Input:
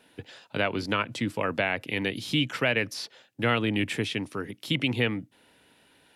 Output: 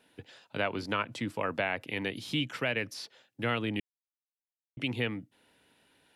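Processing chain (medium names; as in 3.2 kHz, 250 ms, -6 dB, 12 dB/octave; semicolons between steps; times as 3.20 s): 0.58–2.41 s: peaking EQ 920 Hz +3.5 dB 1.7 oct; 3.80–4.77 s: mute; trim -6 dB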